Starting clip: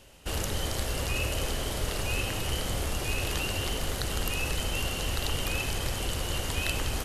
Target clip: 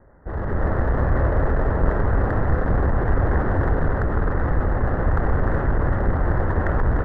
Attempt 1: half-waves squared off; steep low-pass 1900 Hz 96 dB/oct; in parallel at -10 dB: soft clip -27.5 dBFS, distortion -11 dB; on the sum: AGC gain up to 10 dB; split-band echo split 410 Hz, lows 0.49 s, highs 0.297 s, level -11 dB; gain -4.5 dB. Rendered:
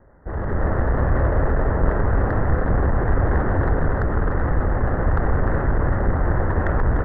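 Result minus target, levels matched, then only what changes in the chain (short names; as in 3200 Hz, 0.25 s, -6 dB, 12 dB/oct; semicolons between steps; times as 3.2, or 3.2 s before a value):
soft clip: distortion -5 dB
change: soft clip -35.5 dBFS, distortion -6 dB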